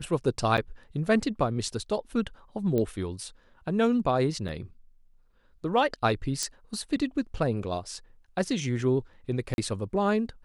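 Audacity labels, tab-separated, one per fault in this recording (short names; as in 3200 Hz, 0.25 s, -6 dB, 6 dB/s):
0.570000	0.580000	gap 8.1 ms
2.780000	2.780000	pop -17 dBFS
4.480000	4.490000	gap 7.2 ms
6.430000	6.430000	pop -15 dBFS
9.540000	9.580000	gap 41 ms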